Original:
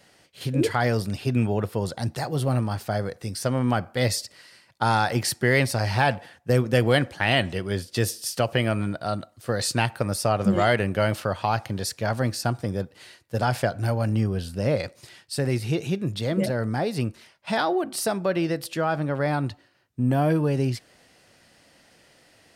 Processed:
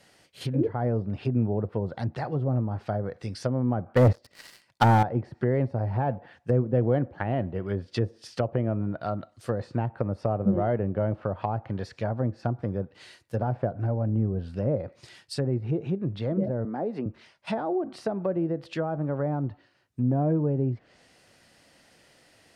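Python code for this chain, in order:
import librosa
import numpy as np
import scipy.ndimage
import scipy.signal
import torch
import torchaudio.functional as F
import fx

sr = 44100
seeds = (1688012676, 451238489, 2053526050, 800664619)

y = fx.env_lowpass_down(x, sr, base_hz=660.0, full_db=-21.0)
y = fx.leveller(y, sr, passes=3, at=(3.96, 5.03))
y = fx.highpass(y, sr, hz=200.0, slope=24, at=(16.65, 17.06))
y = F.gain(torch.from_numpy(y), -2.0).numpy()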